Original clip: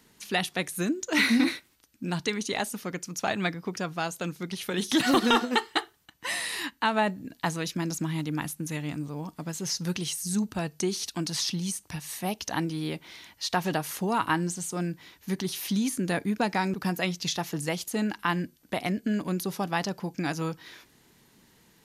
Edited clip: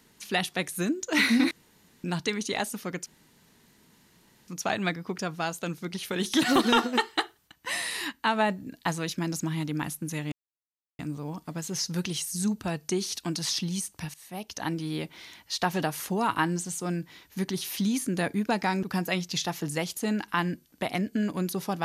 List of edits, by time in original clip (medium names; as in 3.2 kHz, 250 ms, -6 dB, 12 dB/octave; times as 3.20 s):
1.51–2.04 s: room tone
3.06 s: insert room tone 1.42 s
8.90 s: insert silence 0.67 s
12.05–13.01 s: fade in equal-power, from -18.5 dB